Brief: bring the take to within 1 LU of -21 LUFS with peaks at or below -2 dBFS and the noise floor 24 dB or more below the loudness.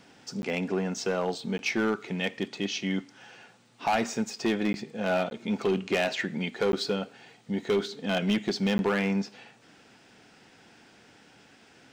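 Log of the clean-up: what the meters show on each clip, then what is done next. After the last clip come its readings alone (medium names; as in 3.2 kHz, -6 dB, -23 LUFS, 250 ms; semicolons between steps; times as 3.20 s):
clipped samples 1.3%; clipping level -20.0 dBFS; dropouts 6; longest dropout 11 ms; loudness -29.5 LUFS; peak level -20.0 dBFS; loudness target -21.0 LUFS
-> clip repair -20 dBFS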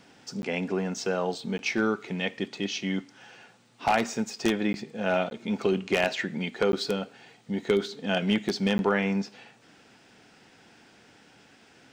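clipped samples 0.0%; dropouts 6; longest dropout 11 ms
-> interpolate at 0.42/1.58/4.73/5.30/6.72/8.78 s, 11 ms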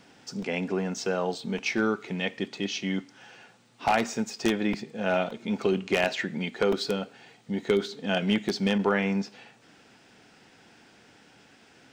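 dropouts 0; loudness -28.5 LUFS; peak level -11.0 dBFS; loudness target -21.0 LUFS
-> trim +7.5 dB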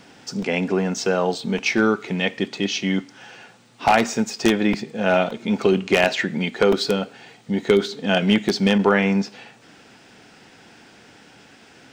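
loudness -21.0 LUFS; peak level -3.5 dBFS; noise floor -50 dBFS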